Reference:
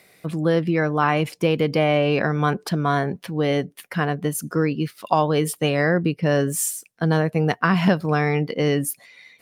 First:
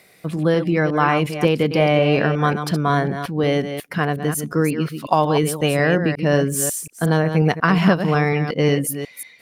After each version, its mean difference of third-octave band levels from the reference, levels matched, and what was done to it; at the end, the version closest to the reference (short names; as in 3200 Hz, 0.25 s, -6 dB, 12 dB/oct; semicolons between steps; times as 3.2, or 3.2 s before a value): 4.0 dB: reverse delay 0.181 s, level -8.5 dB; gain +2 dB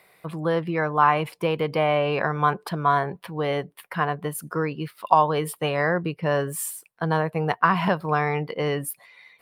3.0 dB: fifteen-band EQ 100 Hz -5 dB, 250 Hz -9 dB, 1000 Hz +9 dB, 6300 Hz -11 dB; gain -3 dB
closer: second